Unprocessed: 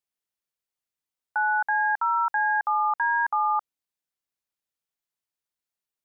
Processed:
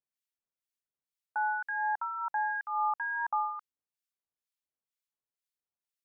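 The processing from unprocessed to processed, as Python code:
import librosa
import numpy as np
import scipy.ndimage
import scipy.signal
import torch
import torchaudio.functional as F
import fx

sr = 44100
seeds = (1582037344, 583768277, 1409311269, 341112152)

y = fx.harmonic_tremolo(x, sr, hz=2.1, depth_pct=100, crossover_hz=1500.0)
y = y * librosa.db_to_amplitude(-3.0)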